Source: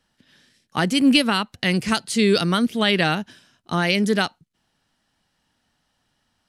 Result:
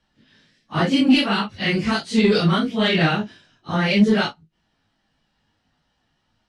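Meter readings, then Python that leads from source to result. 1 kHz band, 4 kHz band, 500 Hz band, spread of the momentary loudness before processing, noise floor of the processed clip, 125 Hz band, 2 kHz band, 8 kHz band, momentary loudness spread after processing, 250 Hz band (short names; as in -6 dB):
0.0 dB, -1.0 dB, +1.0 dB, 11 LU, -71 dBFS, +3.5 dB, 0.0 dB, -8.0 dB, 10 LU, +2.0 dB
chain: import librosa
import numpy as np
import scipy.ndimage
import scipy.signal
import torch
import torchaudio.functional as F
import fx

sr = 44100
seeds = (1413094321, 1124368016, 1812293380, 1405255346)

y = fx.phase_scramble(x, sr, seeds[0], window_ms=100)
y = scipy.signal.sosfilt(scipy.signal.butter(2, 5100.0, 'lowpass', fs=sr, output='sos'), y)
y = fx.low_shelf(y, sr, hz=340.0, db=3.0)
y = 10.0 ** (-6.5 / 20.0) * np.tanh(y / 10.0 ** (-6.5 / 20.0))
y = fx.doubler(y, sr, ms=19.0, db=-8.0)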